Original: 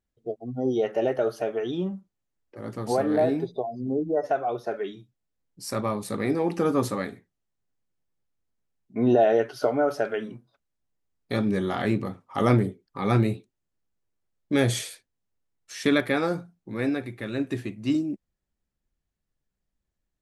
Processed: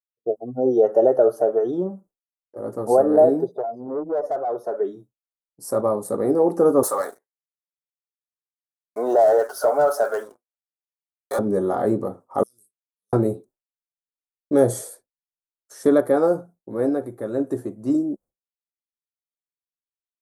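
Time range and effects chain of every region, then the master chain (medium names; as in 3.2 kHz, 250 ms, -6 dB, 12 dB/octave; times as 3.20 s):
3.49–4.80 s: valve stage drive 27 dB, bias 0.3 + bass shelf 200 Hz -8.5 dB
6.83–11.39 s: high-pass 1 kHz + waveshaping leveller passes 3
12.43–13.13 s: inverse Chebyshev high-pass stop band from 2.1 kHz, stop band 50 dB + compression 5:1, threshold -54 dBFS
whole clip: bass shelf 87 Hz -8 dB; expander -47 dBFS; FFT filter 200 Hz 0 dB, 530 Hz +11 dB, 1.4 kHz -1 dB, 2.5 kHz -24 dB, 9.4 kHz +5 dB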